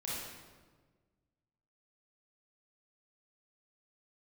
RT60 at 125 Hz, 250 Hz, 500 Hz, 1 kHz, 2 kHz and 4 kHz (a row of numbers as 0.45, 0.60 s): 2.0, 1.8, 1.6, 1.3, 1.1, 1.0 s